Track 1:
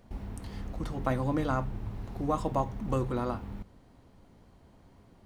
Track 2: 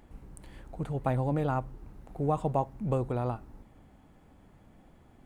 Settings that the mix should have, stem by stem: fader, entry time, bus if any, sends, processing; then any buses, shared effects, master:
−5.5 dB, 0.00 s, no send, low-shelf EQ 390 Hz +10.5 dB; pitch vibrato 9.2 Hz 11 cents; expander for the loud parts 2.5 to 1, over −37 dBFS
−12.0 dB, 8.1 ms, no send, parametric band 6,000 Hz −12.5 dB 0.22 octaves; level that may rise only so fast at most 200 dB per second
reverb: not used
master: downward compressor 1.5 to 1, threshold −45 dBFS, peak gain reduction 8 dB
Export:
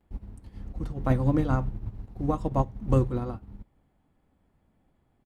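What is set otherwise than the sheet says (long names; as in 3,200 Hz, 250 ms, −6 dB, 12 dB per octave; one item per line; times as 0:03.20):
stem 1 −5.5 dB → +1.0 dB
master: missing downward compressor 1.5 to 1, threshold −45 dBFS, peak gain reduction 8 dB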